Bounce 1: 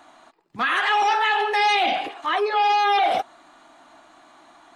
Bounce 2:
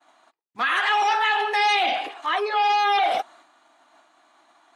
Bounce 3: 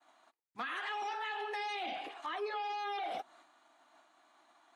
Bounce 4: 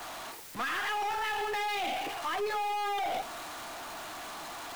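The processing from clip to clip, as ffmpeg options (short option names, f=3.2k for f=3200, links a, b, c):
-af "highpass=f=470:p=1,agate=range=-33dB:threshold=-46dB:ratio=3:detection=peak"
-filter_complex "[0:a]acrossover=split=360[a][b];[b]acompressor=threshold=-31dB:ratio=4[c];[a][c]amix=inputs=2:normalize=0,volume=-8dB"
-af "aeval=exprs='val(0)+0.5*0.00841*sgn(val(0))':c=same,aeval=exprs='(tanh(35.5*val(0)+0.25)-tanh(0.25))/35.5':c=same,volume=5.5dB"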